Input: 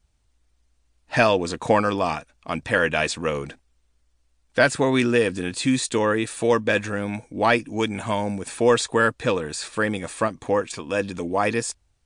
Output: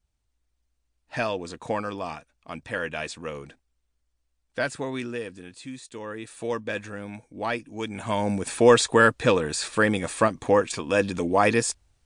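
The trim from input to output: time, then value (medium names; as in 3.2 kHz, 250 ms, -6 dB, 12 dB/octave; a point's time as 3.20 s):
4.71 s -9.5 dB
5.83 s -18.5 dB
6.45 s -9.5 dB
7.76 s -9.5 dB
8.33 s +2 dB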